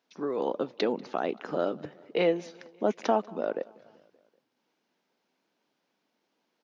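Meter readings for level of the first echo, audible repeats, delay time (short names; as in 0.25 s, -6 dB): -24.0 dB, 3, 0.192 s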